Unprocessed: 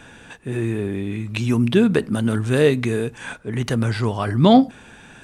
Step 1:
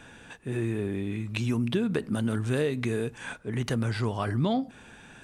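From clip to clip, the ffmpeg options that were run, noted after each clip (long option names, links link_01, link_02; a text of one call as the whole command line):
ffmpeg -i in.wav -af "acompressor=threshold=-17dB:ratio=12,volume=-5.5dB" out.wav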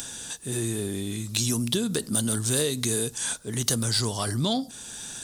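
ffmpeg -i in.wav -af "acompressor=mode=upward:threshold=-41dB:ratio=2.5,aexciter=amount=7.1:drive=8.2:freq=3600,asoftclip=type=tanh:threshold=-13dB" out.wav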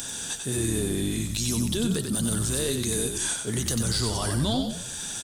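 ffmpeg -i in.wav -filter_complex "[0:a]alimiter=limit=-22dB:level=0:latency=1,asplit=6[link_01][link_02][link_03][link_04][link_05][link_06];[link_02]adelay=93,afreqshift=-45,volume=-5.5dB[link_07];[link_03]adelay=186,afreqshift=-90,volume=-12.6dB[link_08];[link_04]adelay=279,afreqshift=-135,volume=-19.8dB[link_09];[link_05]adelay=372,afreqshift=-180,volume=-26.9dB[link_10];[link_06]adelay=465,afreqshift=-225,volume=-34dB[link_11];[link_01][link_07][link_08][link_09][link_10][link_11]amix=inputs=6:normalize=0,volume=3dB" out.wav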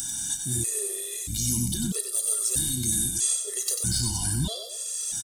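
ffmpeg -i in.wav -filter_complex "[0:a]bass=frequency=250:gain=6,treble=frequency=4000:gain=15,asplit=2[link_01][link_02];[link_02]adelay=32,volume=-12dB[link_03];[link_01][link_03]amix=inputs=2:normalize=0,afftfilt=real='re*gt(sin(2*PI*0.78*pts/sr)*(1-2*mod(floor(b*sr/1024/350),2)),0)':imag='im*gt(sin(2*PI*0.78*pts/sr)*(1-2*mod(floor(b*sr/1024/350),2)),0)':win_size=1024:overlap=0.75,volume=-6.5dB" out.wav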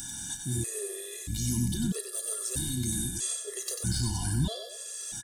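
ffmpeg -i in.wav -af "highshelf=frequency=3300:gain=-9,aeval=exprs='val(0)+0.00126*sin(2*PI*1700*n/s)':channel_layout=same" out.wav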